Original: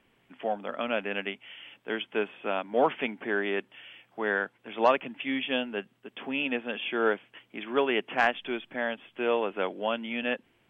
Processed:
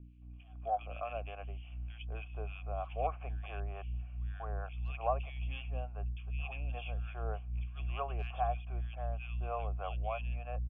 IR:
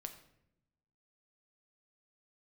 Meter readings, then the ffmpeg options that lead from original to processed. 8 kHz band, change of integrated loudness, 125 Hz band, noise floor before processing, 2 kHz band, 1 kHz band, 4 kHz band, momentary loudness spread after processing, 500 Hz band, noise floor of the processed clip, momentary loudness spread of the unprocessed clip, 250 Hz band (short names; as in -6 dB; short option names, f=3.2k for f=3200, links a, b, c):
n/a, -9.5 dB, +13.5 dB, -68 dBFS, -18.5 dB, -7.5 dB, -18.0 dB, 8 LU, -13.5 dB, -49 dBFS, 11 LU, -21.5 dB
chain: -filter_complex "[0:a]asplit=3[a][b][c];[a]bandpass=f=730:t=q:w=8,volume=0dB[d];[b]bandpass=f=1.09k:t=q:w=8,volume=-6dB[e];[c]bandpass=f=2.44k:t=q:w=8,volume=-9dB[f];[d][e][f]amix=inputs=3:normalize=0,acrossover=split=150|2000[g][h][i];[h]adelay=220[j];[g]adelay=360[k];[k][j][i]amix=inputs=3:normalize=0,aeval=exprs='val(0)+0.00251*(sin(2*PI*60*n/s)+sin(2*PI*2*60*n/s)/2+sin(2*PI*3*60*n/s)/3+sin(2*PI*4*60*n/s)/4+sin(2*PI*5*60*n/s)/5)':c=same,acrossover=split=510[l][m];[l]aeval=exprs='val(0)*(1-0.7/2+0.7/2*cos(2*PI*3.3*n/s))':c=same[n];[m]aeval=exprs='val(0)*(1-0.7/2-0.7/2*cos(2*PI*3.3*n/s))':c=same[o];[n][o]amix=inputs=2:normalize=0,asubboost=boost=12:cutoff=84,volume=3dB"